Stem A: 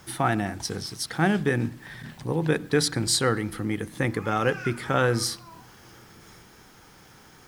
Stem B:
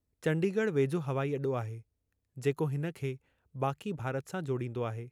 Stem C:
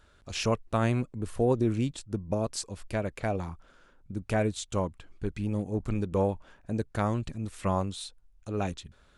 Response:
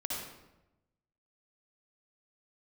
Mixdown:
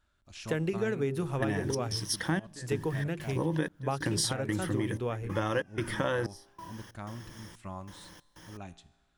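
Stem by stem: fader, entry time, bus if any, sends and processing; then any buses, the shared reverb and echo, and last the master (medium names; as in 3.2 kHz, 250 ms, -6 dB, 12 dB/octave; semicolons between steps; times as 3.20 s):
-1.5 dB, 1.10 s, no send, rippled EQ curve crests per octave 1.2, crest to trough 9 dB; trance gate "..xx.xxx" 93 bpm -24 dB
+2.0 dB, 0.25 s, no send, hum notches 50/100/150/200/250/300/350/400 Hz
-7.5 dB, 0.00 s, no send, peaking EQ 470 Hz -14.5 dB 0.29 oct; feedback comb 57 Hz, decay 1.2 s, harmonics all, mix 50%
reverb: none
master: compression 6:1, threshold -26 dBFS, peak gain reduction 9.5 dB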